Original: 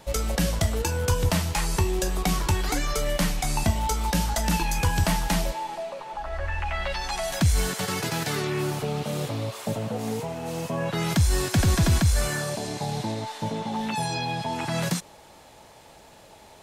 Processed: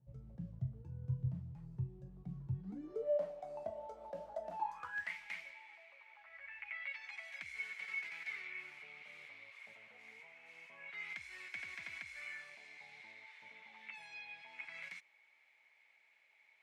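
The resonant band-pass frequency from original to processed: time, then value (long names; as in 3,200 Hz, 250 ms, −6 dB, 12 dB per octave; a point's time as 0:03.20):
resonant band-pass, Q 16
0:02.54 130 Hz
0:03.11 600 Hz
0:04.45 600 Hz
0:05.13 2,200 Hz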